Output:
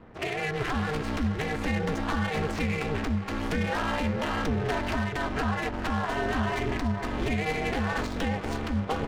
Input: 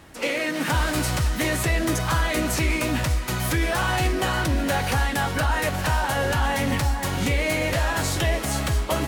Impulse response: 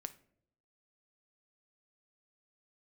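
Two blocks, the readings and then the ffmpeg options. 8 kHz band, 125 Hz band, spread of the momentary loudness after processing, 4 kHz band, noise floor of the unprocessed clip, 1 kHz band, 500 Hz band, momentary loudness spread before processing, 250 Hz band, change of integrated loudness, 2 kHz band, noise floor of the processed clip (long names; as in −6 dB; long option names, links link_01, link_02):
−16.5 dB, −6.5 dB, 2 LU, −9.0 dB, −29 dBFS, −5.0 dB, −4.0 dB, 2 LU, −2.0 dB, −5.5 dB, −6.5 dB, −34 dBFS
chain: -filter_complex "[0:a]alimiter=limit=-17.5dB:level=0:latency=1:release=445,aeval=exprs='val(0)*sin(2*PI*150*n/s)':channel_layout=same,adynamicsmooth=sensitivity=6:basefreq=1400,asplit=2[link_01][link_02];[1:a]atrim=start_sample=2205,lowpass=7100[link_03];[link_02][link_03]afir=irnorm=-1:irlink=0,volume=-8dB[link_04];[link_01][link_04]amix=inputs=2:normalize=0"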